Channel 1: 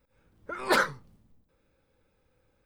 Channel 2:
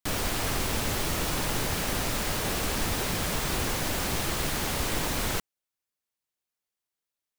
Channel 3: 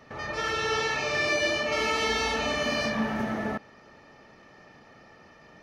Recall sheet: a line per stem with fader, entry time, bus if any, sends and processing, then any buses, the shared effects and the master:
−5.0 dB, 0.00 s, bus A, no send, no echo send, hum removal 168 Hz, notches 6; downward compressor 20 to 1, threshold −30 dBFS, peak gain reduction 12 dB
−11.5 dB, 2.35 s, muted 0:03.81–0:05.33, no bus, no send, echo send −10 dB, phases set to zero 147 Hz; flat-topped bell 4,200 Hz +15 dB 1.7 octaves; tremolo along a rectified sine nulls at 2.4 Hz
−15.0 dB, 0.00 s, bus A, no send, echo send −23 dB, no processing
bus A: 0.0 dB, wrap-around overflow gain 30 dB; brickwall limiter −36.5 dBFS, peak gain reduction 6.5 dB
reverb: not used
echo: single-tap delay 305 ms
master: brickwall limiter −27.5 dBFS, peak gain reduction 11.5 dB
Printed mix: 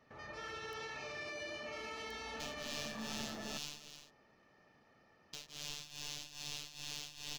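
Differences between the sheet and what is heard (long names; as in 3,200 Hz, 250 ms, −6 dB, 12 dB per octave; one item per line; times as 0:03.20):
stem 1: muted
stem 2 −11.5 dB → −20.5 dB
master: missing brickwall limiter −27.5 dBFS, peak gain reduction 11.5 dB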